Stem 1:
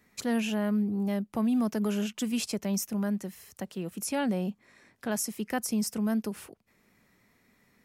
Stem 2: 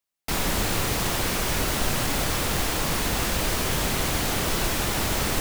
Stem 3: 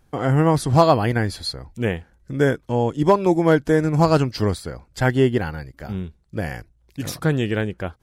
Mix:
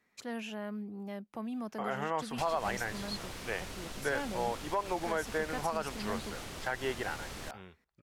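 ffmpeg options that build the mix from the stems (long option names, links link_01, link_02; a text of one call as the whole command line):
ffmpeg -i stem1.wav -i stem2.wav -i stem3.wav -filter_complex "[0:a]lowpass=frequency=3900:poles=1,lowshelf=frequency=270:gain=-11.5,volume=-6dB[link_01];[1:a]acrossover=split=2500|6600[link_02][link_03][link_04];[link_02]acompressor=threshold=-31dB:ratio=4[link_05];[link_03]acompressor=threshold=-39dB:ratio=4[link_06];[link_04]acompressor=threshold=-41dB:ratio=4[link_07];[link_05][link_06][link_07]amix=inputs=3:normalize=0,lowpass=12000,adelay=2100,volume=-11.5dB[link_08];[2:a]acrossover=split=560 3300:gain=0.0891 1 0.2[link_09][link_10][link_11];[link_09][link_10][link_11]amix=inputs=3:normalize=0,adelay=1650,volume=-6dB[link_12];[link_01][link_08][link_12]amix=inputs=3:normalize=0,alimiter=limit=-21.5dB:level=0:latency=1:release=113" out.wav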